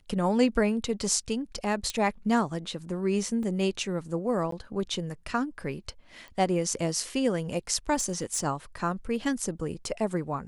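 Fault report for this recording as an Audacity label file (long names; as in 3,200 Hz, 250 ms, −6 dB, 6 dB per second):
1.900000	1.900000	click −16 dBFS
3.430000	3.430000	drop-out 2.4 ms
4.510000	4.520000	drop-out 13 ms
6.280000	6.280000	click −32 dBFS
7.960000	8.450000	clipping −24 dBFS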